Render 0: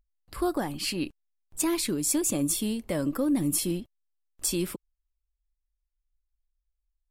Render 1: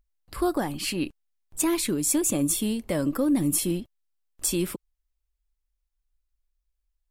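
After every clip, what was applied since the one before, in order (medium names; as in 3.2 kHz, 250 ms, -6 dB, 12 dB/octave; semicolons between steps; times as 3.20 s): dynamic bell 4.8 kHz, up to -5 dB, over -46 dBFS, Q 3.4; trim +2.5 dB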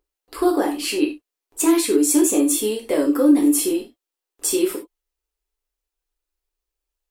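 resonant low shelf 230 Hz -14 dB, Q 3; gated-style reverb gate 120 ms falling, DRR -0.5 dB; trim +1.5 dB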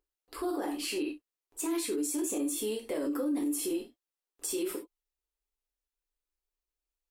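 peak limiter -16.5 dBFS, peak gain reduction 11 dB; trim -8.5 dB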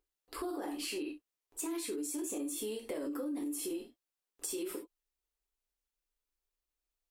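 compression 3:1, threshold -37 dBFS, peak gain reduction 7 dB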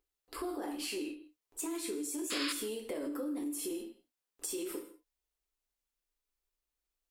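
painted sound noise, 2.30–2.53 s, 1–5.4 kHz -37 dBFS; gated-style reverb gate 190 ms flat, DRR 11.5 dB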